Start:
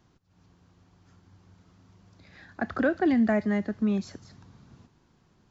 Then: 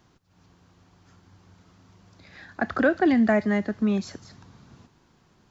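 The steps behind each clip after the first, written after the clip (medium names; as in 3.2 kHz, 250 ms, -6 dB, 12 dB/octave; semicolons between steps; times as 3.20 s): bass shelf 350 Hz -4.5 dB; trim +5.5 dB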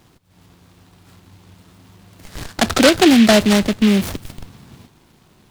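in parallel at -10 dB: Schmitt trigger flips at -39 dBFS; on the sum: delay time shaken by noise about 2.6 kHz, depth 0.12 ms; trim +8.5 dB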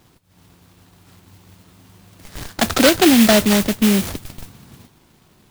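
modulation noise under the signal 11 dB; trim -1.5 dB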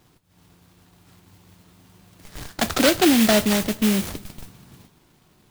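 reverberation, pre-delay 3 ms, DRR 13.5 dB; trim -4.5 dB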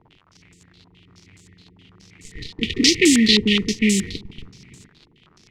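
FFT band-reject 480–1800 Hz; crackle 85 per s -39 dBFS; step-sequenced low-pass 9.5 Hz 920–7500 Hz; trim +1.5 dB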